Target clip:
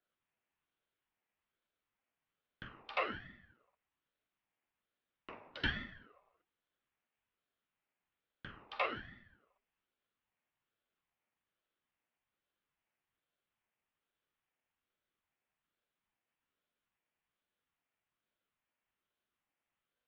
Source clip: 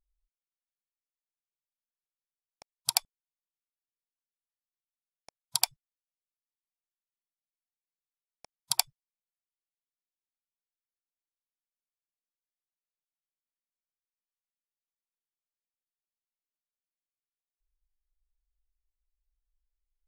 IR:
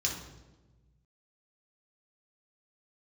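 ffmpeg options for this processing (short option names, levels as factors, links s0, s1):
-filter_complex "[0:a]areverse,acompressor=threshold=0.0126:ratio=6,areverse[s0];[1:a]atrim=start_sample=2205,asetrate=57330,aresample=44100[s1];[s0][s1]afir=irnorm=-1:irlink=0,highpass=f=270:t=q:w=0.5412,highpass=f=270:t=q:w=1.307,lowpass=f=2600:t=q:w=0.5176,lowpass=f=2600:t=q:w=0.7071,lowpass=f=2600:t=q:w=1.932,afreqshift=66,aeval=exprs='val(0)*sin(2*PI*610*n/s+610*0.7/1.2*sin(2*PI*1.2*n/s))':c=same,volume=5.01"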